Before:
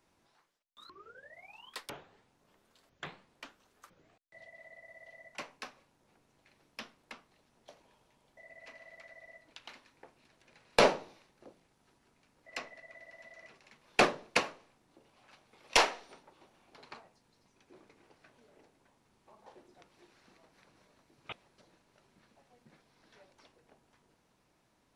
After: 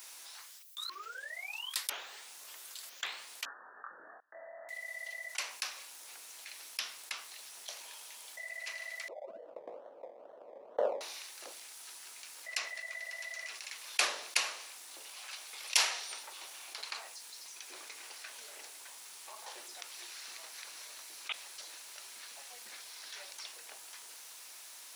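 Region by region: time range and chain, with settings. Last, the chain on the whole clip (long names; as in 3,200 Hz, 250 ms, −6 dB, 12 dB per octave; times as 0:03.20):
0:03.45–0:04.69: Chebyshev low-pass filter 1,800 Hz, order 10 + double-tracking delay 24 ms −3 dB
0:09.08–0:11.01: sample-and-hold swept by an LFO 25×, swing 60% 2.2 Hz + low-pass with resonance 550 Hz, resonance Q 4.3
whole clip: Bessel high-pass filter 460 Hz, order 2; first difference; envelope flattener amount 50%; level +4 dB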